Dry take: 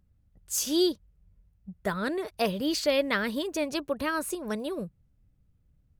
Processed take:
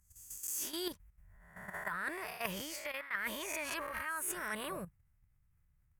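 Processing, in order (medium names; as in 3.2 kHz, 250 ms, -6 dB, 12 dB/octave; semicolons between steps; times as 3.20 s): reverse spectral sustain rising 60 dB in 0.63 s; level held to a coarse grid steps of 12 dB; ten-band graphic EQ 250 Hz -10 dB, 500 Hz -8 dB, 1 kHz +6 dB, 2 kHz +11 dB, 4 kHz -11 dB, 8 kHz +3 dB, 16 kHz +11 dB; reverse; compression 16:1, threshold -36 dBFS, peak gain reduction 23 dB; reverse; trim +1 dB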